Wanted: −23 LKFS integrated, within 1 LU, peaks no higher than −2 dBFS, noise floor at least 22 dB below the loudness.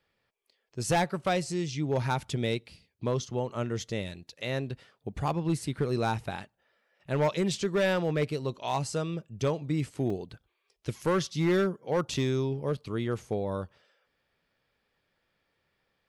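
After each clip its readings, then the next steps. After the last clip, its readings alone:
share of clipped samples 0.9%; peaks flattened at −20.5 dBFS; number of dropouts 2; longest dropout 3.0 ms; integrated loudness −30.5 LKFS; sample peak −20.5 dBFS; target loudness −23.0 LKFS
→ clipped peaks rebuilt −20.5 dBFS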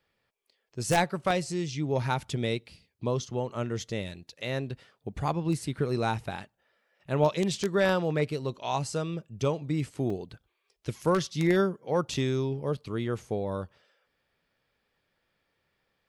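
share of clipped samples 0.0%; number of dropouts 2; longest dropout 3.0 ms
→ repair the gap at 0:10.10/0:12.14, 3 ms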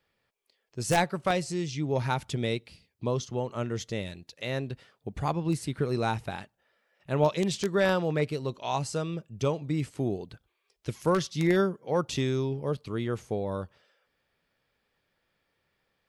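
number of dropouts 0; integrated loudness −30.0 LKFS; sample peak −11.5 dBFS; target loudness −23.0 LKFS
→ level +7 dB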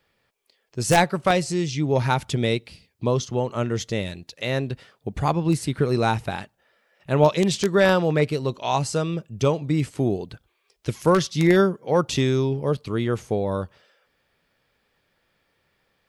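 integrated loudness −23.0 LKFS; sample peak −4.5 dBFS; background noise floor −71 dBFS

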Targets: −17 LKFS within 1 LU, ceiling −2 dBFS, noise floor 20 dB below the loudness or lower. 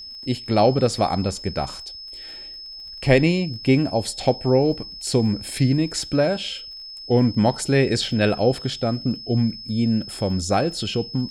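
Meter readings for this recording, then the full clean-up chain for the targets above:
crackle rate 28 per second; interfering tone 5,200 Hz; level of the tone −35 dBFS; integrated loudness −21.5 LKFS; sample peak −2.5 dBFS; target loudness −17.0 LKFS
→ click removal
notch filter 5,200 Hz, Q 30
level +4.5 dB
brickwall limiter −2 dBFS

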